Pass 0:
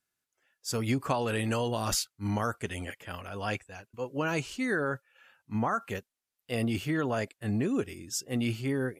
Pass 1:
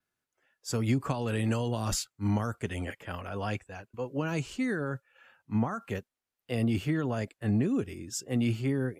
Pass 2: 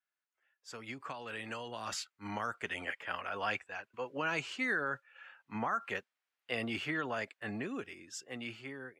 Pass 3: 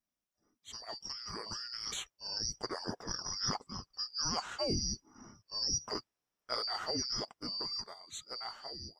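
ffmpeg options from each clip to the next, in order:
-filter_complex "[0:a]adynamicequalizer=threshold=0.002:dfrequency=7400:dqfactor=4.5:tfrequency=7400:tqfactor=4.5:attack=5:release=100:ratio=0.375:range=3:mode=boostabove:tftype=bell,acrossover=split=250|3000[a][b][c];[b]acompressor=threshold=-35dB:ratio=6[d];[a][d][c]amix=inputs=3:normalize=0,highshelf=f=2.8k:g=-9.5,volume=3.5dB"
-af "dynaudnorm=f=840:g=5:m=10.5dB,bandpass=f=1.9k:t=q:w=0.82:csg=0,volume=-5dB"
-af "afftfilt=real='real(if(lt(b,272),68*(eq(floor(b/68),0)*1+eq(floor(b/68),1)*2+eq(floor(b/68),2)*3+eq(floor(b/68),3)*0)+mod(b,68),b),0)':imag='imag(if(lt(b,272),68*(eq(floor(b/68),0)*1+eq(floor(b/68),1)*2+eq(floor(b/68),2)*3+eq(floor(b/68),3)*0)+mod(b,68),b),0)':win_size=2048:overlap=0.75"

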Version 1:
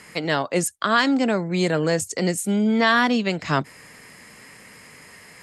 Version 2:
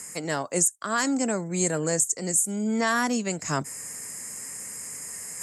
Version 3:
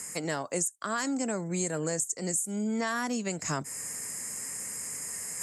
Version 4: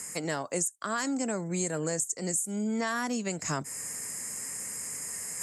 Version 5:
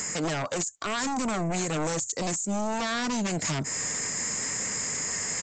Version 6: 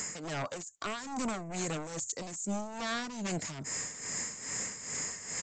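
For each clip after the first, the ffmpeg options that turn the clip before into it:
-af "highshelf=f=5.2k:t=q:w=3:g=13,areverse,acompressor=mode=upward:threshold=-25dB:ratio=2.5,areverse,alimiter=limit=-5.5dB:level=0:latency=1:release=350,volume=-5.5dB"
-af "acompressor=threshold=-29dB:ratio=3"
-af anull
-af "alimiter=level_in=2dB:limit=-24dB:level=0:latency=1:release=77,volume=-2dB,aresample=16000,aeval=exprs='0.0562*sin(PI/2*2.82*val(0)/0.0562)':c=same,aresample=44100"
-af "tremolo=f=2.4:d=0.69,volume=-4.5dB"

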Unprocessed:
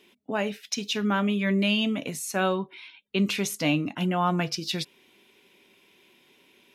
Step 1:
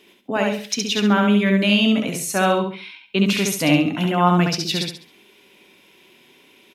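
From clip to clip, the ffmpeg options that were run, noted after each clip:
-af "aecho=1:1:68|136|204|272:0.708|0.227|0.0725|0.0232,volume=5.5dB"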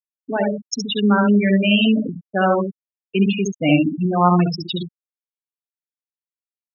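-af "afftfilt=real='re*gte(hypot(re,im),0.251)':imag='im*gte(hypot(re,im),0.251)':win_size=1024:overlap=0.75,volume=1.5dB"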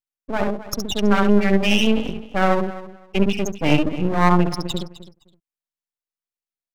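-af "aecho=1:1:258|516:0.158|0.0301,aeval=exprs='max(val(0),0)':c=same,volume=2dB"

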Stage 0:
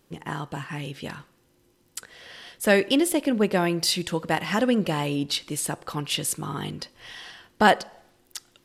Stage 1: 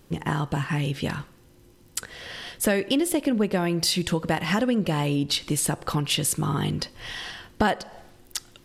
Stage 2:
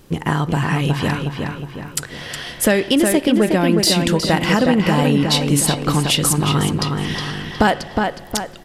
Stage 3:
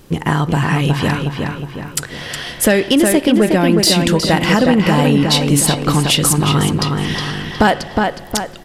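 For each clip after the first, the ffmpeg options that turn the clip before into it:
-af "lowshelf=f=140:g=10,acompressor=threshold=-27dB:ratio=4,volume=6dB"
-filter_complex "[0:a]asplit=2[a][b];[b]adelay=364,lowpass=f=3.6k:p=1,volume=-4dB,asplit=2[c][d];[d]adelay=364,lowpass=f=3.6k:p=1,volume=0.48,asplit=2[e][f];[f]adelay=364,lowpass=f=3.6k:p=1,volume=0.48,asplit=2[g][h];[h]adelay=364,lowpass=f=3.6k:p=1,volume=0.48,asplit=2[i][j];[j]adelay=364,lowpass=f=3.6k:p=1,volume=0.48,asplit=2[k][l];[l]adelay=364,lowpass=f=3.6k:p=1,volume=0.48[m];[a][c][e][g][i][k][m]amix=inputs=7:normalize=0,volume=7dB"
-af "asoftclip=type=tanh:threshold=-3.5dB,volume=3.5dB"

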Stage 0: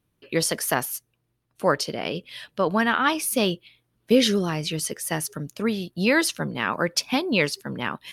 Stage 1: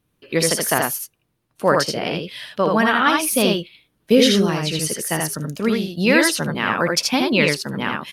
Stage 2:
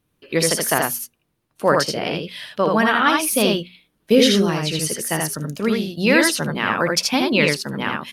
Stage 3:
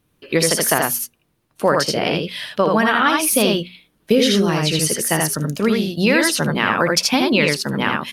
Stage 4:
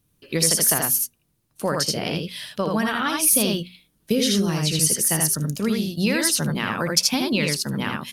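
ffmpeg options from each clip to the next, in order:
-af "aecho=1:1:60|80:0.266|0.708,volume=3.5dB"
-af "bandreject=f=60:t=h:w=6,bandreject=f=120:t=h:w=6,bandreject=f=180:t=h:w=6,bandreject=f=240:t=h:w=6"
-af "acompressor=threshold=-18dB:ratio=3,volume=5dB"
-af "bass=f=250:g=8,treble=f=4k:g=11,volume=-9dB"

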